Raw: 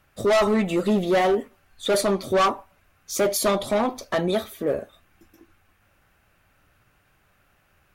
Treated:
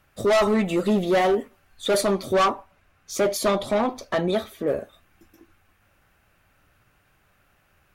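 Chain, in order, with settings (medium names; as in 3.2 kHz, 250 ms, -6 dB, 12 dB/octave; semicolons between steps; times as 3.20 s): 2.44–4.68 s: treble shelf 8.2 kHz -8.5 dB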